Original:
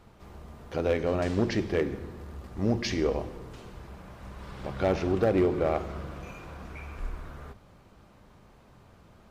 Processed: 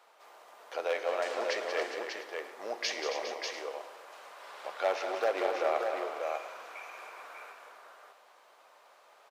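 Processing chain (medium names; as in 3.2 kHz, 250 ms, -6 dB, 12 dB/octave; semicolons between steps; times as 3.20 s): high-pass 570 Hz 24 dB/octave; on a send: multi-tap echo 183/270/407/592/696 ms -9/-10/-11.5/-5/-17.5 dB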